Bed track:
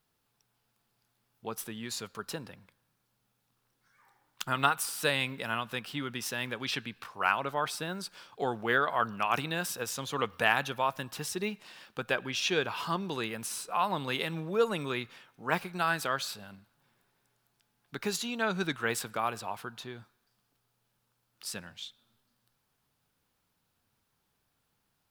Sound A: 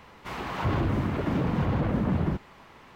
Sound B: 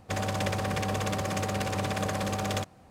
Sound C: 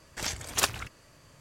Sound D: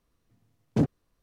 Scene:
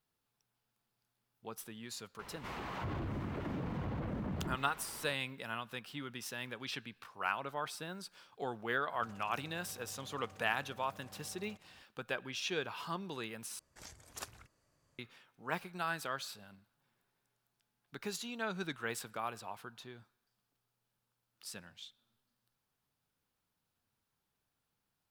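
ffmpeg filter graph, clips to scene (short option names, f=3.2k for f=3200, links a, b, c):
-filter_complex "[0:a]volume=-8dB[a];[1:a]acompressor=threshold=-49dB:ratio=2:attack=16:release=23:knee=1:detection=peak[b];[2:a]acompressor=threshold=-42dB:ratio=6:attack=3.2:release=140:knee=1:detection=peak[c];[3:a]equalizer=f=2.9k:t=o:w=1.2:g=-5[d];[a]asplit=2[e][f];[e]atrim=end=13.594[g];[d]atrim=end=1.4,asetpts=PTS-STARTPTS,volume=-18dB[h];[f]atrim=start=14.986[i];[b]atrim=end=2.95,asetpts=PTS-STARTPTS,volume=-1.5dB,afade=t=in:d=0.004:c=hsin,afade=t=out:st=2.946:d=0.004:c=hsin,adelay=2190[j];[c]atrim=end=2.9,asetpts=PTS-STARTPTS,volume=-12dB,afade=t=in:d=0.004:c=hsin,afade=t=out:st=2.896:d=0.004:c=hsin,adelay=8930[k];[g][h]acrossfade=d=0.004:c1=hsin:c2=hsin[l];[l][i]acrossfade=d=0.004:c1=hsin:c2=hsin[m];[m][j][k]amix=inputs=3:normalize=0"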